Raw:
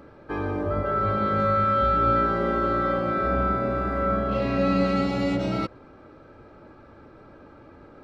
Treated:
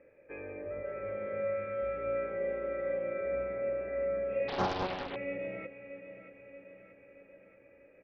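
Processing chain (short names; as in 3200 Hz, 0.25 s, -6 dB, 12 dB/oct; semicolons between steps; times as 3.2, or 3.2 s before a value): vocal tract filter e; bell 2400 Hz +15 dB 0.64 oct; feedback echo 0.631 s, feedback 55%, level -12 dB; 4.48–5.16 Doppler distortion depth 0.99 ms; gain -3 dB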